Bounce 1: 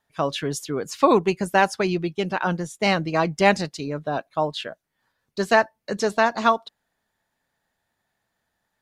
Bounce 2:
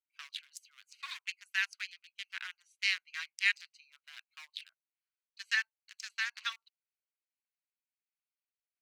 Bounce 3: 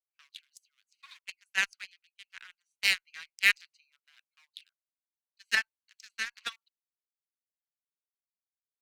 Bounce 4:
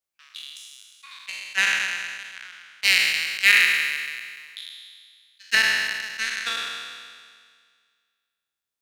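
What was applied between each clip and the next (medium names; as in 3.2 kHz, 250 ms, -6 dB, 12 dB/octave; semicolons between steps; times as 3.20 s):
local Wiener filter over 25 samples; steep high-pass 1.8 kHz 36 dB/octave; trim -3 dB
Chebyshev shaper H 7 -21 dB, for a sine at -14 dBFS; three bands expanded up and down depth 40%; trim +2.5 dB
spectral sustain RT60 1.90 s; trim +4.5 dB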